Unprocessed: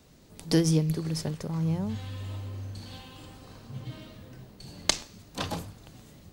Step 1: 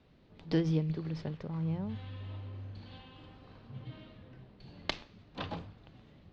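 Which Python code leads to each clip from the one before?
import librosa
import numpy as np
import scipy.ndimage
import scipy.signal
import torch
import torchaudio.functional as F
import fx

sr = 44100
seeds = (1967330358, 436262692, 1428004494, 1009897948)

y = scipy.signal.sosfilt(scipy.signal.butter(4, 3700.0, 'lowpass', fs=sr, output='sos'), x)
y = F.gain(torch.from_numpy(y), -6.0).numpy()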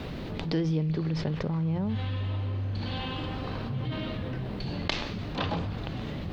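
y = fx.env_flatten(x, sr, amount_pct=70)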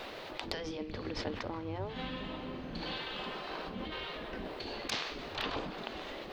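y = np.clip(x, -10.0 ** (-17.0 / 20.0), 10.0 ** (-17.0 / 20.0))
y = fx.spec_gate(y, sr, threshold_db=-10, keep='weak')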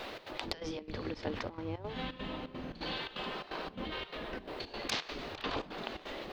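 y = fx.step_gate(x, sr, bpm=171, pattern='xx.xxx.xx.x', floor_db=-12.0, edge_ms=4.5)
y = F.gain(torch.from_numpy(y), 1.0).numpy()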